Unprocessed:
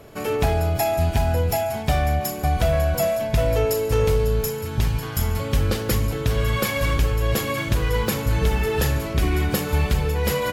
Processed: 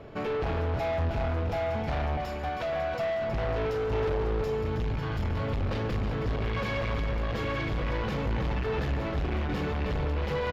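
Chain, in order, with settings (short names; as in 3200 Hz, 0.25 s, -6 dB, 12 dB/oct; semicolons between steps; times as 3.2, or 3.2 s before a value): 2.17–2.99 HPF 620 Hz 6 dB/oct; hard clip -27.5 dBFS, distortion -5 dB; air absorption 240 m; echo 0.318 s -8.5 dB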